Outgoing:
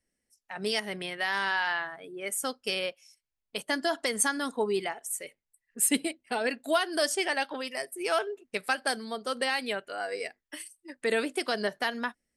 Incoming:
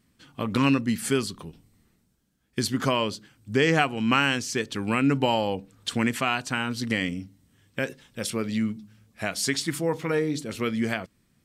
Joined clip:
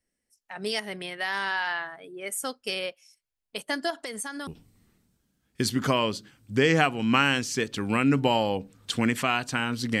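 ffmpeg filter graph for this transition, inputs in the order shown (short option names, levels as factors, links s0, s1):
-filter_complex "[0:a]asettb=1/sr,asplit=3[s0][s1][s2];[s0]atrim=end=3.904[s3];[s1]atrim=start=3.9:end=4.47,asetpts=PTS-STARTPTS,afade=t=in:d=0.004:c=qsin,afade=t=out:st=0.566:d=0.004:c=qsin,acompressor=threshold=0.0224:ratio=3:attack=3.2:release=140:knee=1:detection=peak[s4];[s2]atrim=start=4.466[s5];[s3][s4]acrossfade=d=0.004:c1=hsin:c2=qsin[s6];[s6][s5]acrossfade=d=0.004:c1=qsin:c2=hsin,apad=whole_dur=10,atrim=end=10,atrim=end=4.472[s7];[1:a]atrim=start=1.448:end=6.98[s8];[s7][s8]acrossfade=d=0.004:c1=hsin:c2=hsin"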